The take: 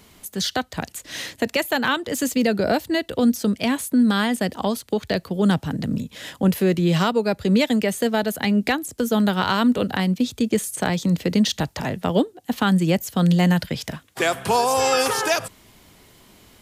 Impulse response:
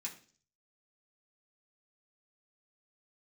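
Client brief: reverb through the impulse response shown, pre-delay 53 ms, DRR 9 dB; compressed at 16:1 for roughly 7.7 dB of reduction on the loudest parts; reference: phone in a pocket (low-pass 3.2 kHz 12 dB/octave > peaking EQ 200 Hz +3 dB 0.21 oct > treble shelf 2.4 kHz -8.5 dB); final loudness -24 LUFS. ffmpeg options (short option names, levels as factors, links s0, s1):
-filter_complex "[0:a]acompressor=threshold=0.0891:ratio=16,asplit=2[s0][s1];[1:a]atrim=start_sample=2205,adelay=53[s2];[s1][s2]afir=irnorm=-1:irlink=0,volume=0.447[s3];[s0][s3]amix=inputs=2:normalize=0,lowpass=3200,equalizer=f=200:t=o:w=0.21:g=3,highshelf=f=2400:g=-8.5,volume=1.33"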